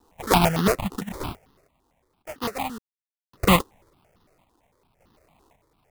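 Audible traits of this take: a quantiser's noise floor 12-bit, dither triangular; random-step tremolo 1.8 Hz, depth 100%; aliases and images of a low sample rate 1.6 kHz, jitter 20%; notches that jump at a steady rate 8.9 Hz 600–2300 Hz

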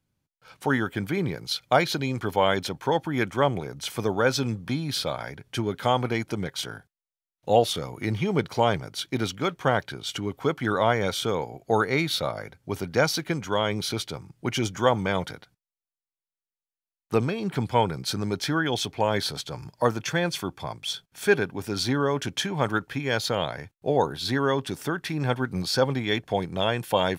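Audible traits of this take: noise floor -94 dBFS; spectral tilt -5.0 dB/octave

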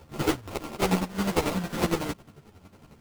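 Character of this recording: a buzz of ramps at a fixed pitch in blocks of 32 samples; chopped level 11 Hz, depth 60%, duty 35%; aliases and images of a low sample rate 1.7 kHz, jitter 20%; a shimmering, thickened sound

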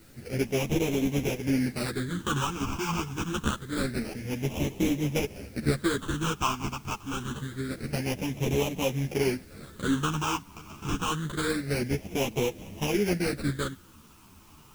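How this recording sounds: aliases and images of a low sample rate 1.9 kHz, jitter 20%; phasing stages 8, 0.26 Hz, lowest notch 540–1400 Hz; a quantiser's noise floor 10-bit, dither triangular; a shimmering, thickened sound

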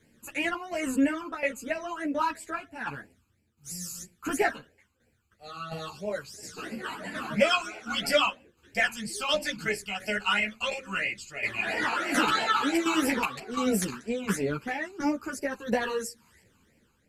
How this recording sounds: phasing stages 12, 3 Hz, lowest notch 580–1200 Hz; tremolo saw down 1.4 Hz, depth 65%; a shimmering, thickened sound

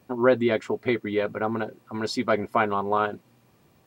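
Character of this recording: noise floor -61 dBFS; spectral tilt -4.0 dB/octave

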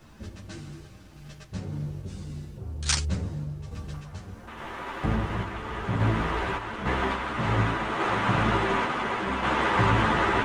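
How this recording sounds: a quantiser's noise floor 12-bit, dither none; random-step tremolo; a shimmering, thickened sound

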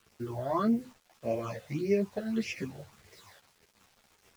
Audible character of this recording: phasing stages 8, 1.7 Hz, lowest notch 300–1200 Hz; a quantiser's noise floor 10-bit, dither none; a shimmering, thickened sound

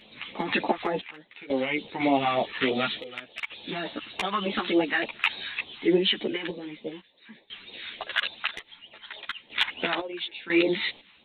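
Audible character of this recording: phasing stages 2, 3.4 Hz, lowest notch 500–1500 Hz; random-step tremolo 2 Hz, depth 95%; a shimmering, thickened sound

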